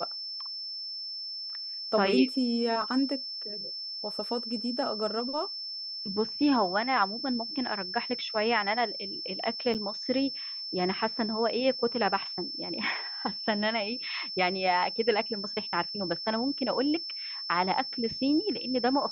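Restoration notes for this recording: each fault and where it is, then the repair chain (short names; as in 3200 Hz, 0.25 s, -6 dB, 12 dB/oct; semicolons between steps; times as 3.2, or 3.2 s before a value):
tone 5300 Hz -35 dBFS
9.74–9.75 gap 8 ms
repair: notch 5300 Hz, Q 30; interpolate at 9.74, 8 ms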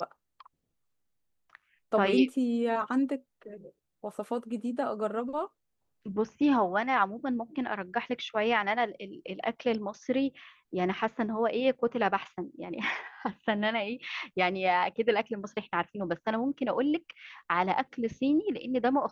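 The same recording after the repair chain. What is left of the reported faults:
none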